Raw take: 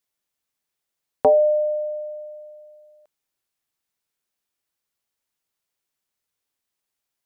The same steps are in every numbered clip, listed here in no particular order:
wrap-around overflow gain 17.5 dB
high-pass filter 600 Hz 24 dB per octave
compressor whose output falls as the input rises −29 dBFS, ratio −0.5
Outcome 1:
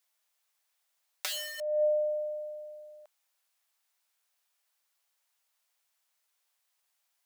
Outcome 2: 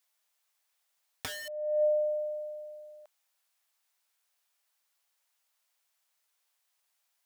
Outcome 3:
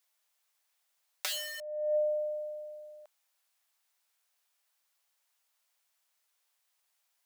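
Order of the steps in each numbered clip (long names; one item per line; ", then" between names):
wrap-around overflow, then high-pass filter, then compressor whose output falls as the input rises
high-pass filter, then wrap-around overflow, then compressor whose output falls as the input rises
wrap-around overflow, then compressor whose output falls as the input rises, then high-pass filter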